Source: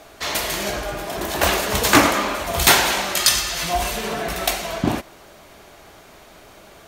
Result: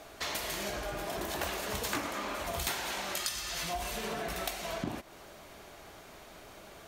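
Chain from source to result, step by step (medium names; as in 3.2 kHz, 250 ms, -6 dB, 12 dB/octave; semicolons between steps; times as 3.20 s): compression 5:1, threshold -28 dBFS, peak gain reduction 18 dB; trim -5.5 dB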